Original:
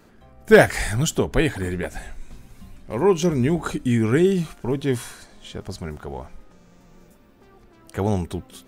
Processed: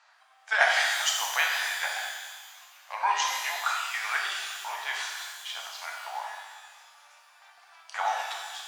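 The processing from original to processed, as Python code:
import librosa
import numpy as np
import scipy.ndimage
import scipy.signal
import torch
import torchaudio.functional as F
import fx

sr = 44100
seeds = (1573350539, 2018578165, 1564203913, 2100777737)

y = fx.rider(x, sr, range_db=3, speed_s=2.0)
y = scipy.signal.sosfilt(scipy.signal.butter(8, 750.0, 'highpass', fs=sr, output='sos'), y)
y = fx.chopper(y, sr, hz=3.3, depth_pct=60, duty_pct=75)
y = scipy.signal.sosfilt(scipy.signal.butter(4, 6400.0, 'lowpass', fs=sr, output='sos'), y)
y = fx.rev_shimmer(y, sr, seeds[0], rt60_s=1.3, semitones=12, shimmer_db=-8, drr_db=-1.5)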